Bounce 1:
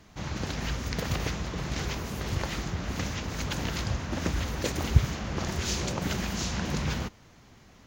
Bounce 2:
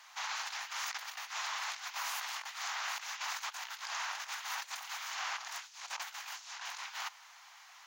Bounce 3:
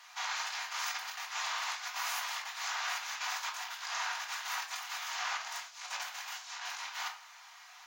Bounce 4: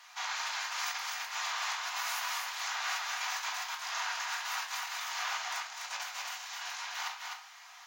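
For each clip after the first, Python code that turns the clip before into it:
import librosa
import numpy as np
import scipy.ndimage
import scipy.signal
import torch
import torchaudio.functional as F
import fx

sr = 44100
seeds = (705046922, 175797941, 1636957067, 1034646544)

y1 = scipy.signal.sosfilt(scipy.signal.butter(8, 800.0, 'highpass', fs=sr, output='sos'), x)
y1 = fx.over_compress(y1, sr, threshold_db=-42.0, ratio=-0.5)
y1 = y1 * 10.0 ** (1.0 / 20.0)
y2 = fx.room_shoebox(y1, sr, seeds[0], volume_m3=390.0, walls='furnished', distance_m=1.8)
y3 = y2 + 10.0 ** (-3.5 / 20.0) * np.pad(y2, (int(253 * sr / 1000.0), 0))[:len(y2)]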